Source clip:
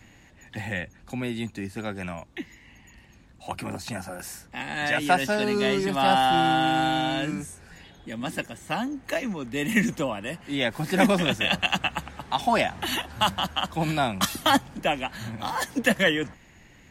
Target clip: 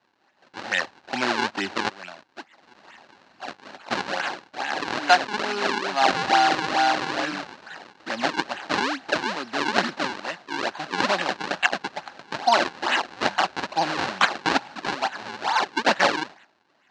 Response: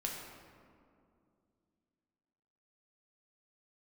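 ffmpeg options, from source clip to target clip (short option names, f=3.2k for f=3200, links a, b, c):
-filter_complex "[0:a]asplit=3[a][b][c];[a]afade=t=out:st=1.88:d=0.02[d];[b]acompressor=threshold=-46dB:ratio=20,afade=t=in:st=1.88:d=0.02,afade=t=out:st=3.9:d=0.02[e];[c]afade=t=in:st=3.9:d=0.02[f];[d][e][f]amix=inputs=3:normalize=0,acrusher=samples=40:mix=1:aa=0.000001:lfo=1:lforange=64:lforate=2.3,agate=range=-8dB:threshold=-49dB:ratio=16:detection=peak,highpass=470,equalizer=f=470:t=q:w=4:g=-7,equalizer=f=830:t=q:w=4:g=4,equalizer=f=1.6k:t=q:w=4:g=6,equalizer=f=2.8k:t=q:w=4:g=6,equalizer=f=4.1k:t=q:w=4:g=8,lowpass=f=5.9k:w=0.5412,lowpass=f=5.9k:w=1.3066,dynaudnorm=f=130:g=13:m=15.5dB,equalizer=f=3.3k:t=o:w=1.1:g=-5,volume=1dB"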